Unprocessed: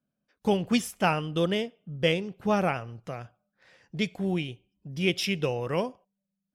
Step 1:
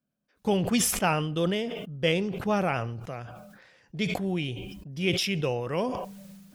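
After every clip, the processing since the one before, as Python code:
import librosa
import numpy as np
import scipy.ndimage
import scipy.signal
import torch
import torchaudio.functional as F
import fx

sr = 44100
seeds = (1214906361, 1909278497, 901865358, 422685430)

y = fx.sustainer(x, sr, db_per_s=39.0)
y = y * 10.0 ** (-1.5 / 20.0)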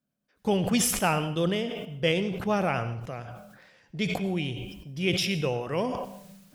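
y = fx.rev_plate(x, sr, seeds[0], rt60_s=0.52, hf_ratio=0.95, predelay_ms=80, drr_db=12.5)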